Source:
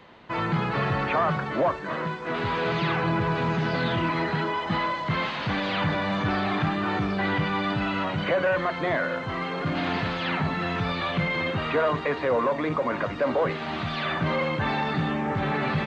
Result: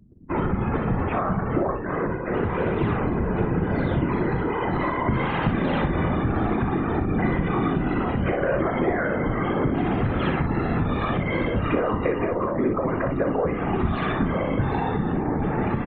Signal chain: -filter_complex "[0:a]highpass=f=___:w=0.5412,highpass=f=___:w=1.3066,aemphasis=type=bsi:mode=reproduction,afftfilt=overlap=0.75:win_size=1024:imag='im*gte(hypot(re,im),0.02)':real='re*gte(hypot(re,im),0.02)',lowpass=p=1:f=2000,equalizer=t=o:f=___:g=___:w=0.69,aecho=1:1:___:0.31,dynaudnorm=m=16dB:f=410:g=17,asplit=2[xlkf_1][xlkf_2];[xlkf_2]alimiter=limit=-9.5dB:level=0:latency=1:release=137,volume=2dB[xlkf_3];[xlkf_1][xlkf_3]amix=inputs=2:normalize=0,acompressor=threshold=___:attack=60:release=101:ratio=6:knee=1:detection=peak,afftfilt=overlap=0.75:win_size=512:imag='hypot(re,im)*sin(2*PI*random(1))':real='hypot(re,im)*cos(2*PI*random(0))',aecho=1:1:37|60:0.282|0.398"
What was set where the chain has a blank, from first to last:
43, 43, 290, 3.5, 2.5, -20dB